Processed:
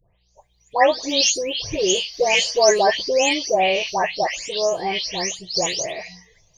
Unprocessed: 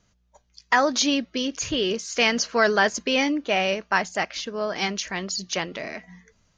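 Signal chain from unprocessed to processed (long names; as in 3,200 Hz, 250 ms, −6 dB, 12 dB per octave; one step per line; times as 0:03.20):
every frequency bin delayed by itself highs late, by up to 363 ms
phaser with its sweep stopped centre 580 Hz, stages 4
level +8.5 dB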